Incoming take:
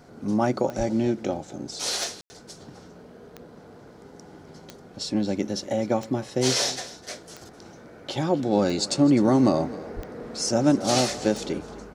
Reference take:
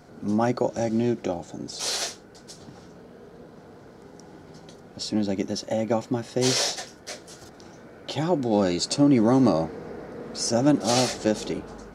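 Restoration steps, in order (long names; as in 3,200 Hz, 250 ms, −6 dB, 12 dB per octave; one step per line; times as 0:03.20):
click removal
0:00.77–0:00.89: high-pass filter 140 Hz 24 dB per octave
0:09.95–0:10.07: high-pass filter 140 Hz 24 dB per octave
ambience match 0:02.21–0:02.30
echo removal 256 ms −18 dB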